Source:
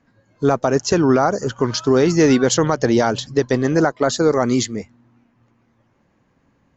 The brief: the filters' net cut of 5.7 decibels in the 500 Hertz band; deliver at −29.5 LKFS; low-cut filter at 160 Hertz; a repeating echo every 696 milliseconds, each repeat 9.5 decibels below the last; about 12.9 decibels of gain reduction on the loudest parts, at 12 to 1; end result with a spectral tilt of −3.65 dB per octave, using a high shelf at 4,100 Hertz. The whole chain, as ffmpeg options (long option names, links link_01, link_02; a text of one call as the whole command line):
ffmpeg -i in.wav -af "highpass=160,equalizer=frequency=500:width_type=o:gain=-7.5,highshelf=frequency=4100:gain=6.5,acompressor=threshold=-25dB:ratio=12,aecho=1:1:696|1392|2088|2784:0.335|0.111|0.0365|0.012,volume=0.5dB" out.wav